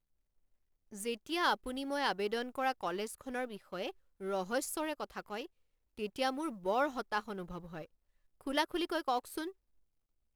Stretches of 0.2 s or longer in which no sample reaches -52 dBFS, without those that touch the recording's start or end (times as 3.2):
3.91–4.2
5.46–5.97
7.86–8.41